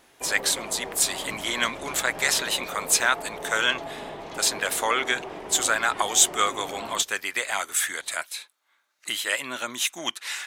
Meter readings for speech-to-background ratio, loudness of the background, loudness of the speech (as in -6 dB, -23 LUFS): 12.5 dB, -37.0 LUFS, -24.5 LUFS